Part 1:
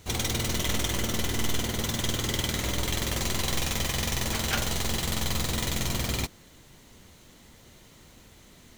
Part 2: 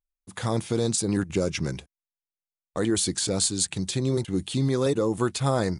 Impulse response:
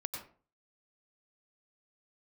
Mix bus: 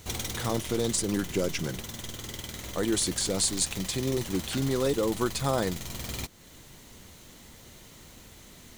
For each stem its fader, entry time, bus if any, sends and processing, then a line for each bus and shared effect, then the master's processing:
+2.0 dB, 0.00 s, no send, compression 1.5:1, threshold -42 dBFS, peak gain reduction 7.5 dB; treble shelf 5.9 kHz +4.5 dB; auto duck -7 dB, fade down 0.65 s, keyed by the second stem
-2.0 dB, 0.00 s, no send, high-pass 160 Hz 6 dB/octave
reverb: none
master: none

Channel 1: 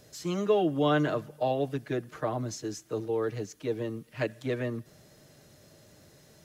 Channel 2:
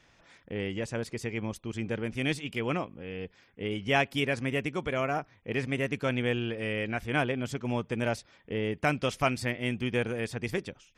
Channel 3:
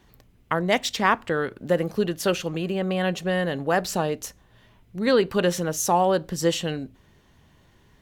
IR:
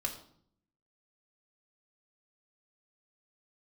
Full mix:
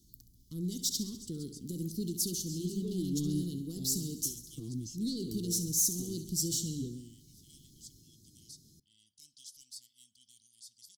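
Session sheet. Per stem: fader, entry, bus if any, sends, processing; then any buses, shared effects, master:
-3.0 dB, 2.35 s, send -17.5 dB, no echo send, endings held to a fixed fall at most 100 dB/s
-5.5 dB, 0.35 s, send -11.5 dB, no echo send, inverse Chebyshev high-pass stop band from 1.2 kHz, stop band 40 dB; saturation -29.5 dBFS, distortion -13 dB
-6.0 dB, 0.00 s, no send, echo send -13 dB, peak limiter -13.5 dBFS, peak gain reduction 7.5 dB; treble shelf 3.5 kHz +12 dB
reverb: on, RT60 0.60 s, pre-delay 3 ms
echo: feedback delay 68 ms, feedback 59%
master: small resonant body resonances 1/3 kHz, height 8 dB; saturation -22 dBFS, distortion -15 dB; inverse Chebyshev band-stop 560–2600 Hz, stop band 40 dB

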